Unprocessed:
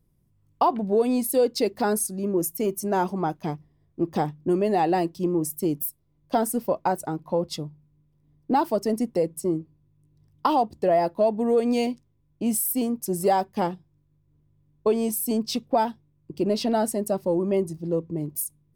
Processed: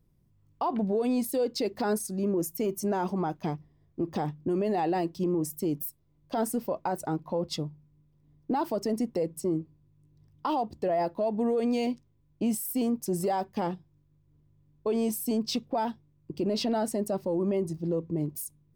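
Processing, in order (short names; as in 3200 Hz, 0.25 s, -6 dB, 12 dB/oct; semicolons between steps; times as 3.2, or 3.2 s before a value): limiter -20.5 dBFS, peak gain reduction 10.5 dB; bell 11000 Hz -7.5 dB 0.75 oct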